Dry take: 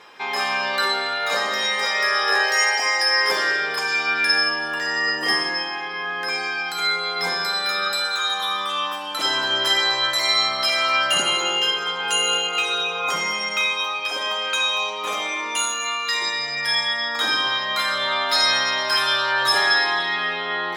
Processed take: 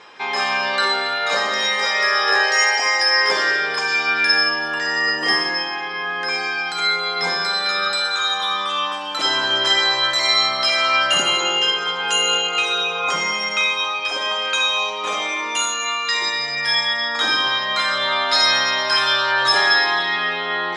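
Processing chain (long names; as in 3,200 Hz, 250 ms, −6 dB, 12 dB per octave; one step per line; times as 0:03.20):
low-pass filter 7,900 Hz 24 dB per octave
level +2.5 dB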